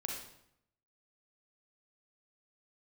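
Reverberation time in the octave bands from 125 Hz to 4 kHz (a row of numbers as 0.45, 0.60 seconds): 0.90, 0.85, 0.75, 0.75, 0.65, 0.60 seconds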